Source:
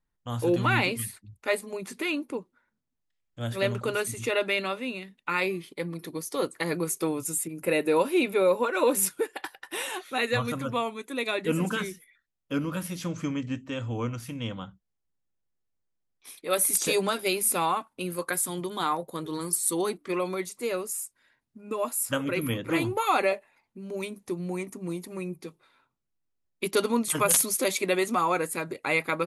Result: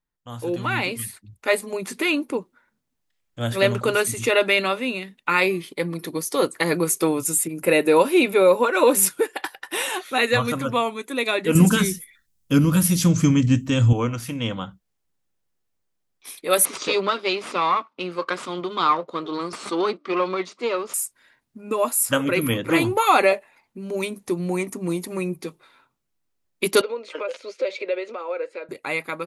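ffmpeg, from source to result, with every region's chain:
-filter_complex "[0:a]asettb=1/sr,asplit=3[s0][s1][s2];[s0]atrim=end=11.554[s3];[s1]atrim=start=11.55:end=13.93,asetpts=PTS-STARTPTS,afade=t=in:d=0.004:c=qsin,afade=t=out:st=2.376:d=0.004:c=qsin,bass=f=250:g=14,treble=f=4000:g=11,bandreject=f=570:w=16[s4];[s2]atrim=start=13.926[s5];[s3][s4]acrossfade=d=0.004:c1=hsin:c2=qsin[s6];[s6][s5]acrossfade=d=0.004:c1=qsin:c2=hsin,asettb=1/sr,asplit=3[s7][s8][s9];[s7]atrim=end=16.654[s10];[s8]atrim=start=16.65:end=20.94,asetpts=PTS-STARTPTS,afade=t=in:d=0.004:c=qsin,afade=t=out:st=4.286:d=0.004:c=qsin,aeval=exprs='if(lt(val(0),0),0.447*val(0),val(0))':c=same,highpass=230,equalizer=f=770:t=q:w=4:g=-6,equalizer=f=1200:t=q:w=4:g=7,equalizer=f=1700:t=q:w=4:g=-6,lowpass=f=5000:w=0.5412,lowpass=f=5000:w=1.3066[s11];[s9]atrim=start=20.936[s12];[s10][s11]acrossfade=d=0.004:c1=hsin:c2=qsin[s13];[s13][s12]acrossfade=d=0.004:c1=qsin:c2=hsin,asettb=1/sr,asplit=3[s14][s15][s16];[s14]atrim=end=26.814[s17];[s15]atrim=start=26.81:end=28.69,asetpts=PTS-STARTPTS,afade=t=in:d=0.004:c=qsin,afade=t=out:st=1.876:d=0.004:c=qsin,acompressor=threshold=0.0316:ratio=6:attack=3.2:release=140:knee=1:detection=peak,highpass=f=400:w=0.5412,highpass=f=400:w=1.3066,equalizer=f=530:t=q:w=4:g=10,equalizer=f=760:t=q:w=4:g=-9,equalizer=f=1100:t=q:w=4:g=-9,equalizer=f=1800:t=q:w=4:g=-6,equalizer=f=3400:t=q:w=4:g=-7,lowpass=f=3800:w=0.5412,lowpass=f=3800:w=1.3066[s18];[s16]atrim=start=28.686[s19];[s17][s18]acrossfade=d=0.004:c1=hsin:c2=qsin[s20];[s20][s19]acrossfade=d=0.004:c1=qsin:c2=hsin,lowshelf=f=180:g=-4,dynaudnorm=f=210:g=11:m=3.76,volume=0.794"

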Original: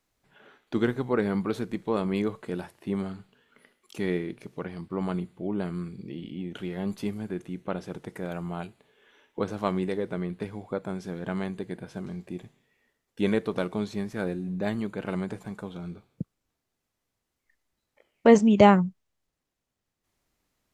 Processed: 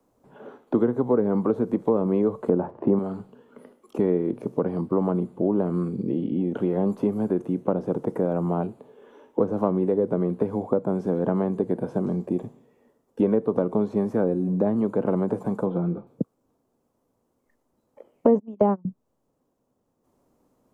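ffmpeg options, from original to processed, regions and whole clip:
-filter_complex "[0:a]asettb=1/sr,asplit=3[s0][s1][s2];[s0]atrim=end=2.494[s3];[s1]atrim=start=2.49:end=2.99,asetpts=PTS-STARTPTS,afade=t=in:d=0.004:c=qsin,afade=t=out:st=0.496:d=0.004:c=qsin,lowpass=1500,acontrast=83[s4];[s2]atrim=start=2.986[s5];[s3][s4]acrossfade=d=0.004:c1=hsin:c2=qsin[s6];[s6][s5]acrossfade=d=0.004:c1=qsin:c2=hsin,asettb=1/sr,asplit=3[s7][s8][s9];[s7]atrim=end=15.664[s10];[s8]atrim=start=15.66:end=16.07,asetpts=PTS-STARTPTS,afade=t=in:d=0.004:c=qsin,afade=t=out:st=0.406:d=0.004:c=qsin,lowpass=2300,aecho=1:1:5.9:0.48,atrim=end_sample=18081[s11];[s9]atrim=start=16.066[s12];[s10][s11]acrossfade=d=0.004:c1=hsin:c2=qsin[s13];[s13][s12]acrossfade=d=0.004:c1=qsin:c2=hsin,asettb=1/sr,asplit=3[s14][s15][s16];[s14]atrim=end=18.394[s17];[s15]atrim=start=18.39:end=18.85,asetpts=PTS-STARTPTS,afade=t=in:d=0.004:c=qsin,afade=t=out:st=0.456:d=0.004:c=qsin,highpass=f=230:p=1,agate=range=0.0398:threshold=0.112:ratio=16:release=100:detection=peak[s18];[s16]atrim=start=18.846[s19];[s17][s18]acrossfade=d=0.004:c1=hsin:c2=qsin[s20];[s20][s19]acrossfade=d=0.004:c1=qsin:c2=hsin,acrossover=split=2700[s21][s22];[s22]acompressor=threshold=0.00141:ratio=4:attack=1:release=60[s23];[s21][s23]amix=inputs=2:normalize=0,equalizer=f=125:t=o:w=1:g=6,equalizer=f=250:t=o:w=1:g=12,equalizer=f=500:t=o:w=1:g=12,equalizer=f=1000:t=o:w=1:g=9,equalizer=f=2000:t=o:w=1:g=-8,equalizer=f=4000:t=o:w=1:g=-6,acrossover=split=140|420[s24][s25][s26];[s24]acompressor=threshold=0.0126:ratio=4[s27];[s25]acompressor=threshold=0.0447:ratio=4[s28];[s26]acompressor=threshold=0.0447:ratio=4[s29];[s27][s28][s29]amix=inputs=3:normalize=0,volume=1.19"

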